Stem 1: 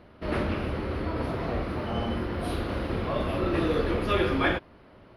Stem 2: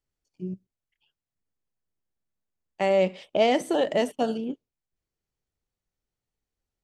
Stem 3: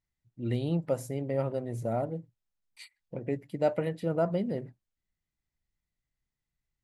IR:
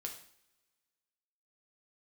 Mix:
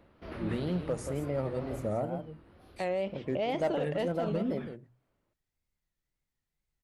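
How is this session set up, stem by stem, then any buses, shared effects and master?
1.68 s -7.5 dB -> 1.94 s -20.5 dB, 0.00 s, no send, echo send -6.5 dB, auto duck -21 dB, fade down 1.10 s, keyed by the third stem
-7.0 dB, 0.00 s, no send, no echo send, low-pass 4 kHz 12 dB/octave
-1.0 dB, 0.00 s, no send, echo send -9 dB, hum notches 60/120 Hz; overload inside the chain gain 20.5 dB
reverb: none
echo: delay 167 ms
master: wow and flutter 120 cents; peak limiter -22.5 dBFS, peak gain reduction 7 dB

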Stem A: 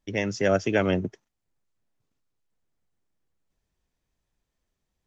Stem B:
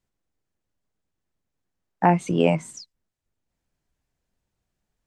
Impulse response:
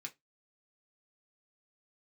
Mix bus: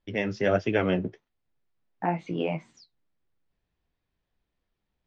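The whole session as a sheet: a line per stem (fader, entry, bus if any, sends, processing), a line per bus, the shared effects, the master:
+2.5 dB, 0.00 s, no send, none
-5.0 dB, 0.00 s, send -4 dB, peak limiter -8 dBFS, peak gain reduction 3.5 dB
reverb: on, RT60 0.15 s, pre-delay 3 ms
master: low-pass 4.4 kHz 24 dB/octave; flange 1.5 Hz, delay 9 ms, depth 8.6 ms, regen -42%

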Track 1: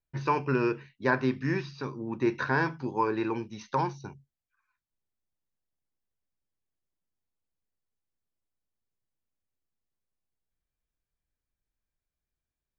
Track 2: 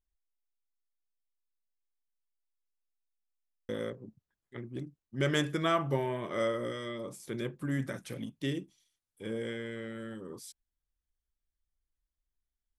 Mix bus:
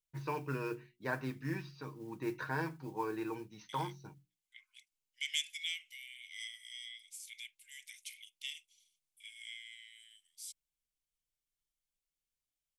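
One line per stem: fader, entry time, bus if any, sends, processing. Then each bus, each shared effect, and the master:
-11.0 dB, 0.00 s, no send, comb 6.4 ms, depth 49%; modulation noise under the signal 25 dB
+2.5 dB, 0.00 s, no send, rippled Chebyshev high-pass 2.1 kHz, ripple 3 dB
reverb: none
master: hum notches 60/120/180/240/300/360 Hz

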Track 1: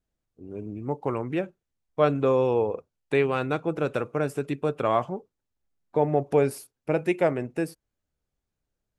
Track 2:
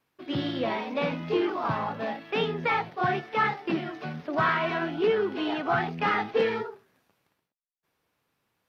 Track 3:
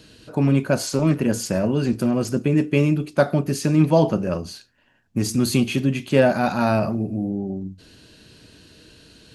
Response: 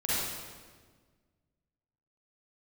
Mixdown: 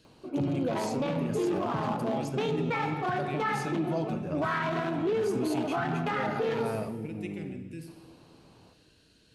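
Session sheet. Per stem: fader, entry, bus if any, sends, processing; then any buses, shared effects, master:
-11.5 dB, 0.15 s, send -13 dB, Chebyshev band-stop 250–2800 Hz, order 2
+2.5 dB, 0.05 s, send -18.5 dB, local Wiener filter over 25 samples; upward compressor, threshold -45 dBFS
-13.5 dB, 0.00 s, no send, none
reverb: on, RT60 1.5 s, pre-delay 38 ms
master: peak limiter -21.5 dBFS, peak gain reduction 10.5 dB

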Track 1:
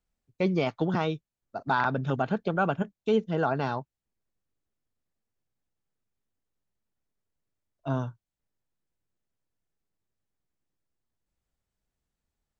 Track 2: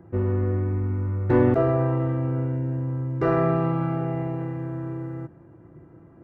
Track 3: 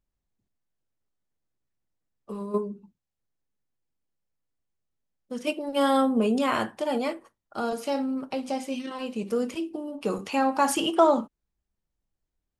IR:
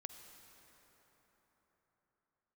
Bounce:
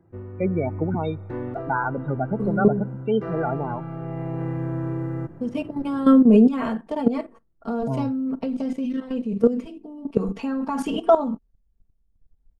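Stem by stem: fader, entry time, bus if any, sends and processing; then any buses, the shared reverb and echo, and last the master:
+1.0 dB, 0.00 s, send -12.5 dB, loudest bins only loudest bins 16
-12.0 dB, 0.00 s, send -13.5 dB, level rider gain up to 16 dB; auto duck -10 dB, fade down 0.30 s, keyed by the first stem
+1.0 dB, 0.10 s, no send, tilt EQ -4 dB/octave; comb 4.4 ms, depth 94%; level held to a coarse grid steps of 13 dB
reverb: on, pre-delay 43 ms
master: none

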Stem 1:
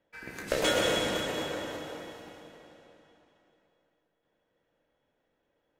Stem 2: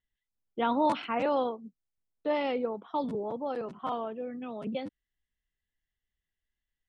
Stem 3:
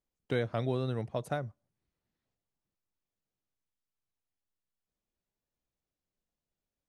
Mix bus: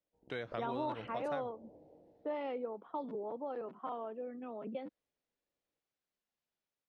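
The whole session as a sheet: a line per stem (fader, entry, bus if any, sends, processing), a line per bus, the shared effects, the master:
-17.5 dB, 0.00 s, no send, steep low-pass 820 Hz 48 dB/octave
-1.5 dB, 0.00 s, no send, level-controlled noise filter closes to 1 kHz, open at -26.5 dBFS; high-pass 290 Hz 12 dB/octave
-1.5 dB, 0.00 s, no send, level rider gain up to 4.5 dB; tilt EQ +4.5 dB/octave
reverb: none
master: tape spacing loss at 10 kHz 30 dB; compression 2:1, threshold -39 dBFS, peak gain reduction 8 dB

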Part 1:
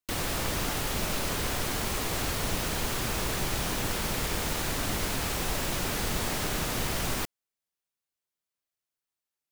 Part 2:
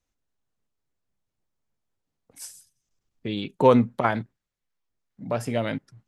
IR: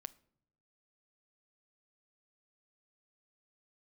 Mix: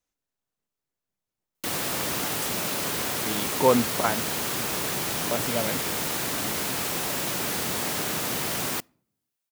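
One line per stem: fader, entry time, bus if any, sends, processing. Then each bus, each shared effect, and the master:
-0.5 dB, 1.55 s, send -5.5 dB, high-pass 150 Hz 12 dB/octave
-2.0 dB, 0.00 s, no send, bass shelf 130 Hz -10 dB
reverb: on, pre-delay 7 ms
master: treble shelf 9 kHz +5.5 dB

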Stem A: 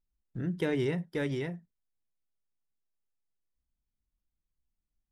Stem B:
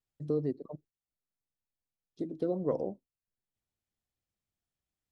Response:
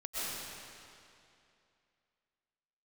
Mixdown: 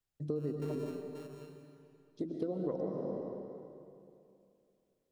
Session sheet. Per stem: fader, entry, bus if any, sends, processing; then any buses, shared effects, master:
-18.5 dB, 0.00 s, send -17 dB, sorted samples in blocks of 32 samples; auto duck -13 dB, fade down 1.95 s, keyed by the second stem
-2.0 dB, 0.00 s, send -4 dB, none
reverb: on, RT60 2.6 s, pre-delay 85 ms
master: compression 6:1, threshold -32 dBFS, peak gain reduction 9 dB

